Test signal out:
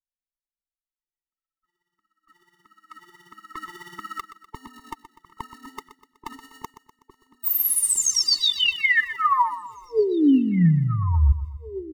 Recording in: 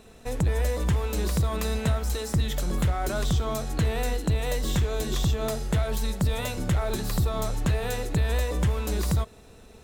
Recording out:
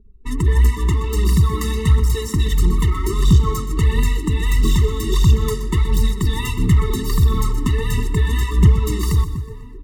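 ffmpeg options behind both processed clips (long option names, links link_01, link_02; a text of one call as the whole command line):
ffmpeg -i in.wav -filter_complex "[0:a]anlmdn=0.631,asplit=2[link_01][link_02];[link_02]adelay=1691,volume=-13dB,highshelf=frequency=4000:gain=-38[link_03];[link_01][link_03]amix=inputs=2:normalize=0,aphaser=in_gain=1:out_gain=1:delay=4:decay=0.53:speed=1.5:type=triangular,asplit=2[link_04][link_05];[link_05]aecho=0:1:124|248|372|496|620:0.224|0.107|0.0516|0.0248|0.0119[link_06];[link_04][link_06]amix=inputs=2:normalize=0,afftfilt=real='re*eq(mod(floor(b*sr/1024/440),2),0)':imag='im*eq(mod(floor(b*sr/1024/440),2),0)':win_size=1024:overlap=0.75,volume=7dB" out.wav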